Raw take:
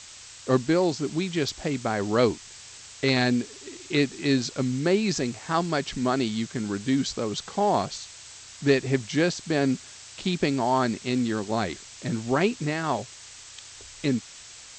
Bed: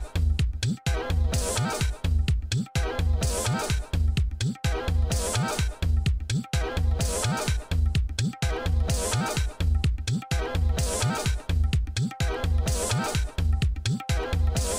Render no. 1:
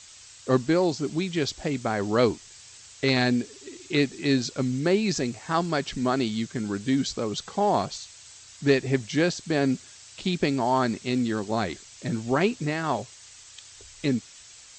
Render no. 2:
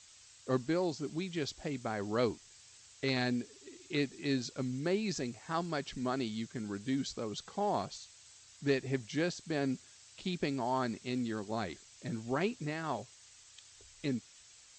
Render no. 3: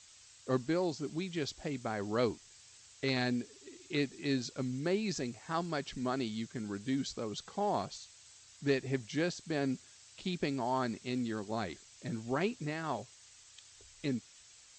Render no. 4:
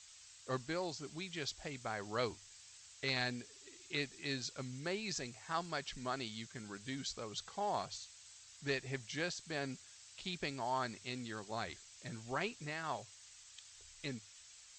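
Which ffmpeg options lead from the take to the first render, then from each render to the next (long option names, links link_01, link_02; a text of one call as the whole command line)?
ffmpeg -i in.wav -af "afftdn=noise_reduction=6:noise_floor=-46" out.wav
ffmpeg -i in.wav -af "volume=-10dB" out.wav
ffmpeg -i in.wav -af anull out.wav
ffmpeg -i in.wav -af "equalizer=frequency=260:width_type=o:width=2.2:gain=-11.5,bandreject=frequency=50:width_type=h:width=6,bandreject=frequency=100:width_type=h:width=6" out.wav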